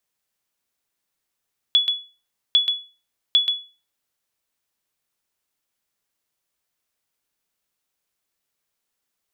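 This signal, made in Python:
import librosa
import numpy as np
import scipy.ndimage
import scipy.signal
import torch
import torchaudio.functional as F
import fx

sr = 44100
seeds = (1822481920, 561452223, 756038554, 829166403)

y = fx.sonar_ping(sr, hz=3400.0, decay_s=0.33, every_s=0.8, pings=3, echo_s=0.13, echo_db=-6.5, level_db=-8.5)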